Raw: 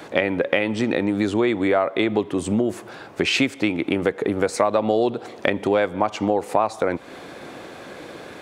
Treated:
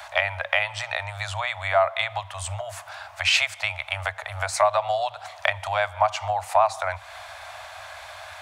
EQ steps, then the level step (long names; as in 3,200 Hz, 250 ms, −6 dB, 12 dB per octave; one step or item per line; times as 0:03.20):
Chebyshev band-stop filter 100–630 Hz, order 5
+2.5 dB